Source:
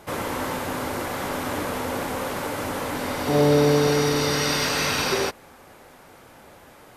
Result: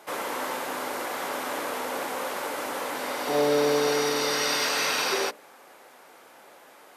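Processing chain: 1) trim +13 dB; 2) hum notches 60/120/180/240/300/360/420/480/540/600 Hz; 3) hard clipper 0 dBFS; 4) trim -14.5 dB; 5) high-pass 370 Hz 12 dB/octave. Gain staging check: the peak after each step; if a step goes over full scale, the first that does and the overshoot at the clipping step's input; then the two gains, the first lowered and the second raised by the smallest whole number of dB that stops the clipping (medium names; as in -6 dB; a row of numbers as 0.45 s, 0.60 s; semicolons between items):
+4.5 dBFS, +4.5 dBFS, 0.0 dBFS, -14.5 dBFS, -12.0 dBFS; step 1, 4.5 dB; step 1 +8 dB, step 4 -9.5 dB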